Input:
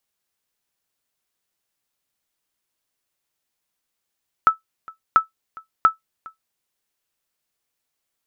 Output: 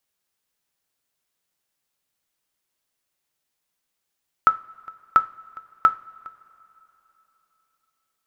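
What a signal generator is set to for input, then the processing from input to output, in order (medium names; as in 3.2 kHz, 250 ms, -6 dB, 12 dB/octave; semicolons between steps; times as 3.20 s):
sonar ping 1.31 kHz, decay 0.13 s, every 0.69 s, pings 3, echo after 0.41 s, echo -24 dB -4.5 dBFS
two-slope reverb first 0.33 s, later 3.6 s, from -21 dB, DRR 11.5 dB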